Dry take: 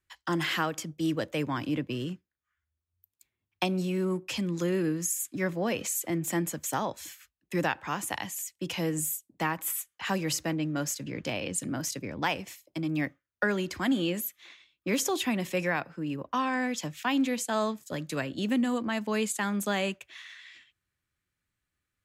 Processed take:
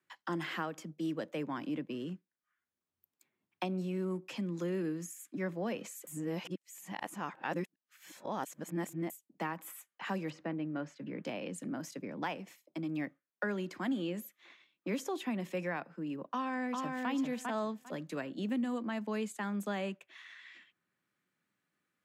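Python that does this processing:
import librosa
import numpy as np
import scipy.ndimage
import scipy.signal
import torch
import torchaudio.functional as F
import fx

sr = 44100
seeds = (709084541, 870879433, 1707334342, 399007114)

y = fx.lowpass(x, sr, hz=2400.0, slope=12, at=(10.3, 11.24))
y = fx.echo_throw(y, sr, start_s=16.31, length_s=0.79, ms=400, feedback_pct=15, wet_db=-3.0)
y = fx.edit(y, sr, fx.reverse_span(start_s=6.07, length_s=3.03), tone=tone)
y = scipy.signal.sosfilt(scipy.signal.cheby1(3, 1.0, 180.0, 'highpass', fs=sr, output='sos'), y)
y = fx.high_shelf(y, sr, hz=2300.0, db=-10.5)
y = fx.band_squash(y, sr, depth_pct=40)
y = F.gain(torch.from_numpy(y), -5.5).numpy()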